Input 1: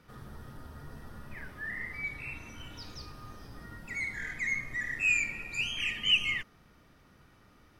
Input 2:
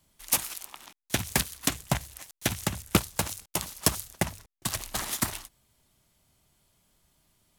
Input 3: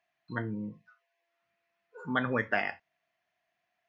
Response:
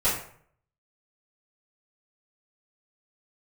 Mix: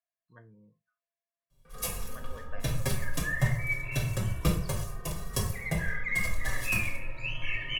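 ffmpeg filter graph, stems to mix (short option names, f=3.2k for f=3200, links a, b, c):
-filter_complex "[0:a]lowpass=2.3k,asplit=2[a][b];[b]adelay=2.1,afreqshift=0.26[c];[a][c]amix=inputs=2:normalize=1,adelay=1650,volume=3dB,asplit=2[d][e];[e]volume=-14dB[f];[1:a]lowshelf=f=330:g=12,asplit=2[g][h];[h]adelay=4.7,afreqshift=-1.6[i];[g][i]amix=inputs=2:normalize=1,adelay=1500,volume=-12dB,asplit=2[j][k];[k]volume=-8.5dB[l];[2:a]highshelf=f=3.2k:g=-10.5,volume=-19.5dB[m];[3:a]atrim=start_sample=2205[n];[f][l]amix=inputs=2:normalize=0[o];[o][n]afir=irnorm=-1:irlink=0[p];[d][j][m][p]amix=inputs=4:normalize=0,aecho=1:1:1.8:0.56"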